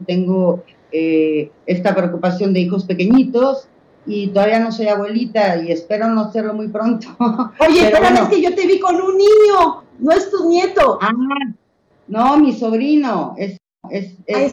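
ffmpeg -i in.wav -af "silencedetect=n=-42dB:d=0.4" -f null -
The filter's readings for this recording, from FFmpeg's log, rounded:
silence_start: 11.56
silence_end: 12.08 | silence_duration: 0.53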